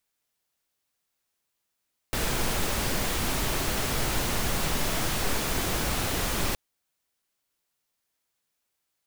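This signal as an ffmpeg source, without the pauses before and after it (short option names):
-f lavfi -i "anoisesrc=c=pink:a=0.229:d=4.42:r=44100:seed=1"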